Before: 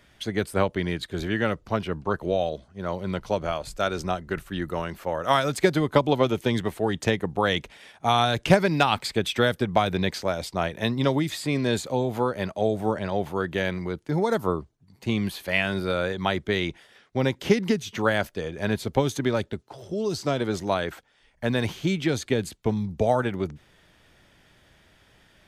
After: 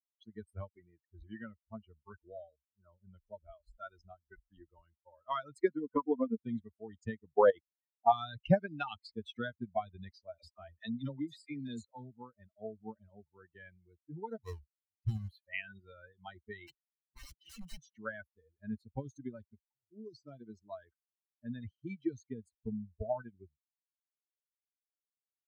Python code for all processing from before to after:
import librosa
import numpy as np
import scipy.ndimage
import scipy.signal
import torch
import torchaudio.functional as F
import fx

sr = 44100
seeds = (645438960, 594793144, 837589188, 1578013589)

y = fx.chain(x, sr, fx.cvsd(bps=16000),
    fx.low_shelf(hz=62.0, db=-10.5), at=(0.68, 1.11))
y = fx.chain(y, sr, fx.lowpass(hz=2200.0, slope=12),
    fx.comb(ms=4.2, depth=0.63), at=(5.68, 6.4))
y = fx.chain(y, sr, fx.peak_eq(hz=530.0, db=11.0, octaves=2.2),
    fx.level_steps(step_db=15),
    fx.leveller(passes=1), at=(7.35, 8.12))
y = fx.chain(y, sr, fx.high_shelf(hz=2300.0, db=3.0),
    fx.dispersion(late='lows', ms=45.0, hz=480.0),
    fx.band_squash(depth_pct=40), at=(10.38, 12.11))
y = fx.chain(y, sr, fx.halfwave_hold(),
    fx.peak_eq(hz=250.0, db=-10.0, octaves=0.79), at=(14.44, 15.45))
y = fx.chain(y, sr, fx.comb(ms=5.9, depth=0.97),
    fx.overflow_wrap(gain_db=20.5), at=(16.67, 17.9))
y = fx.bin_expand(y, sr, power=3.0)
y = fx.lowpass(y, sr, hz=1100.0, slope=6)
y = F.gain(torch.from_numpy(y), -4.0).numpy()